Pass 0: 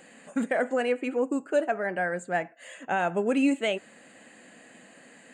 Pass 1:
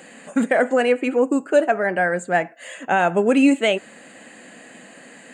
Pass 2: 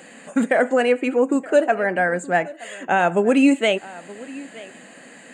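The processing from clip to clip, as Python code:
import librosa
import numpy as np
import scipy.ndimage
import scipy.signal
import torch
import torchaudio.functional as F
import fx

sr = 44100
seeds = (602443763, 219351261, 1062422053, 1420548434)

y1 = scipy.signal.sosfilt(scipy.signal.butter(2, 100.0, 'highpass', fs=sr, output='sos'), x)
y1 = F.gain(torch.from_numpy(y1), 8.5).numpy()
y2 = y1 + 10.0 ** (-20.0 / 20.0) * np.pad(y1, (int(923 * sr / 1000.0), 0))[:len(y1)]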